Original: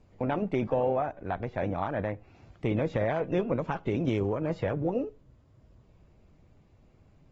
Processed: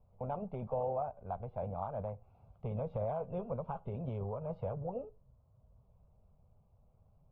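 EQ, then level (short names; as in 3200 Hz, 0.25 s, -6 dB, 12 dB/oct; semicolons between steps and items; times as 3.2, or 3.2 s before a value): Bessel low-pass 1400 Hz, order 2; air absorption 100 m; fixed phaser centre 760 Hz, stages 4; -5.0 dB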